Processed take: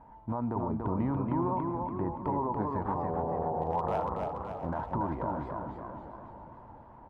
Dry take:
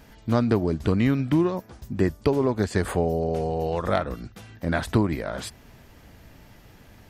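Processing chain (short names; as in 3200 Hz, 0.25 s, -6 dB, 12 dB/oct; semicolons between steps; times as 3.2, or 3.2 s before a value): synth low-pass 930 Hz, resonance Q 9.6; notch 430 Hz, Q 13; 3.61–4.74 one-sided clip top -11.5 dBFS; limiter -15 dBFS, peak gain reduction 11 dB; feedback echo 0.676 s, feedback 42%, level -15.5 dB; warbling echo 0.283 s, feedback 53%, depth 115 cents, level -3.5 dB; gain -8.5 dB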